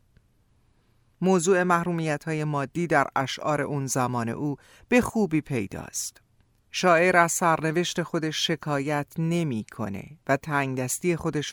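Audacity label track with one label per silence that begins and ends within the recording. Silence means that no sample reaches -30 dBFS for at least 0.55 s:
6.090000	6.740000	silence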